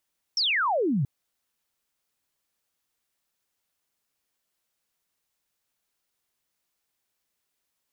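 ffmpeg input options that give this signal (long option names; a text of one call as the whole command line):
ffmpeg -f lavfi -i "aevalsrc='0.0841*clip(t/0.002,0,1)*clip((0.68-t)/0.002,0,1)*sin(2*PI*5700*0.68/log(120/5700)*(exp(log(120/5700)*t/0.68)-1))':duration=0.68:sample_rate=44100" out.wav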